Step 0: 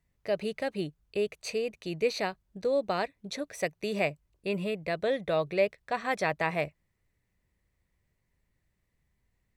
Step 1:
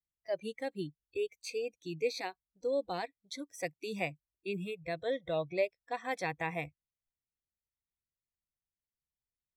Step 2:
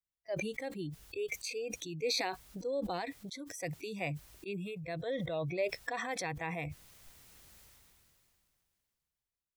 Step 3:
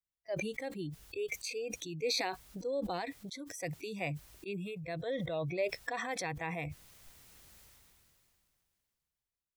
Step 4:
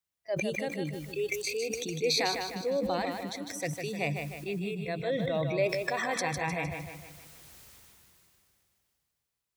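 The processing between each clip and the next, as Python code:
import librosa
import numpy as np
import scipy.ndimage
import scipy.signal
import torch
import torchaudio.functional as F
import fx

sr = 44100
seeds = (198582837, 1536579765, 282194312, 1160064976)

y1 = fx.noise_reduce_blind(x, sr, reduce_db=22)
y1 = fx.peak_eq(y1, sr, hz=1300.0, db=-8.5, octaves=0.49)
y1 = y1 * 10.0 ** (-4.5 / 20.0)
y2 = fx.sustainer(y1, sr, db_per_s=21.0)
y2 = y2 * 10.0 ** (-3.5 / 20.0)
y3 = y2
y4 = scipy.signal.sosfilt(scipy.signal.butter(2, 58.0, 'highpass', fs=sr, output='sos'), y3)
y4 = fx.echo_feedback(y4, sr, ms=153, feedback_pct=48, wet_db=-6.0)
y4 = y4 * 10.0 ** (5.0 / 20.0)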